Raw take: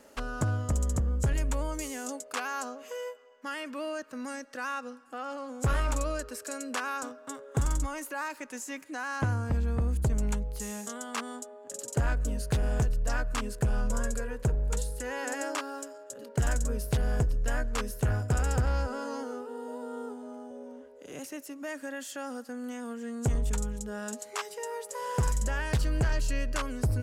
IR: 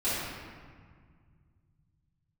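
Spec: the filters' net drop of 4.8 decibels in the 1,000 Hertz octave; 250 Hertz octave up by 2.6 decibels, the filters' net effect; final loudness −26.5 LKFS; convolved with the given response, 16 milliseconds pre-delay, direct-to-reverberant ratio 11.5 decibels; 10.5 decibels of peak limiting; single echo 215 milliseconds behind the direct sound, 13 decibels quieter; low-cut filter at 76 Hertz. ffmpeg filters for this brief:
-filter_complex "[0:a]highpass=76,equalizer=frequency=250:width_type=o:gain=3.5,equalizer=frequency=1000:width_type=o:gain=-6.5,alimiter=level_in=2.5dB:limit=-24dB:level=0:latency=1,volume=-2.5dB,aecho=1:1:215:0.224,asplit=2[link_01][link_02];[1:a]atrim=start_sample=2205,adelay=16[link_03];[link_02][link_03]afir=irnorm=-1:irlink=0,volume=-21.5dB[link_04];[link_01][link_04]amix=inputs=2:normalize=0,volume=10dB"

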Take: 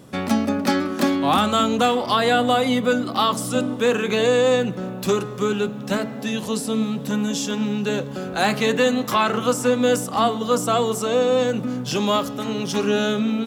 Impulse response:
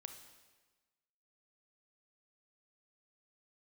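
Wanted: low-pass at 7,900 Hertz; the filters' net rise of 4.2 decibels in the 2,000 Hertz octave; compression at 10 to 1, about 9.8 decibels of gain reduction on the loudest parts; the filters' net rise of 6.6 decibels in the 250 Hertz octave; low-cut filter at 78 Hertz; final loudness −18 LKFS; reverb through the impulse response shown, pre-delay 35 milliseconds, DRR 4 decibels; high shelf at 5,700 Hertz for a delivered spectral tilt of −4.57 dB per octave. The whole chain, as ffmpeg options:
-filter_complex "[0:a]highpass=78,lowpass=7900,equalizer=frequency=250:width_type=o:gain=7.5,equalizer=frequency=2000:width_type=o:gain=5,highshelf=frequency=5700:gain=5.5,acompressor=threshold=-19dB:ratio=10,asplit=2[link_01][link_02];[1:a]atrim=start_sample=2205,adelay=35[link_03];[link_02][link_03]afir=irnorm=-1:irlink=0,volume=1dB[link_04];[link_01][link_04]amix=inputs=2:normalize=0,volume=4.5dB"

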